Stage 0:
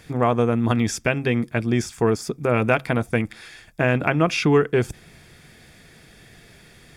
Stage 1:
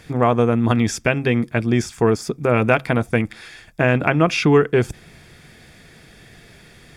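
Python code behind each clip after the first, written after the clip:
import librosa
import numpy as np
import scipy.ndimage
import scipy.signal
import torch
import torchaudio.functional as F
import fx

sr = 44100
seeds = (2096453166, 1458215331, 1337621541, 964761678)

y = fx.high_shelf(x, sr, hz=7600.0, db=-4.0)
y = y * librosa.db_to_amplitude(3.0)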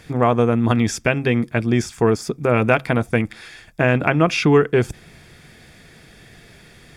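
y = x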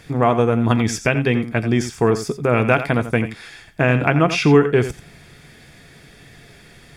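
y = fx.comb_fb(x, sr, f0_hz=140.0, decay_s=0.2, harmonics='all', damping=0.0, mix_pct=50)
y = y + 10.0 ** (-11.5 / 20.0) * np.pad(y, (int(87 * sr / 1000.0), 0))[:len(y)]
y = y * librosa.db_to_amplitude(4.5)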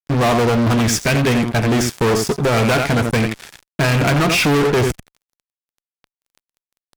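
y = fx.fuzz(x, sr, gain_db=26.0, gate_db=-35.0)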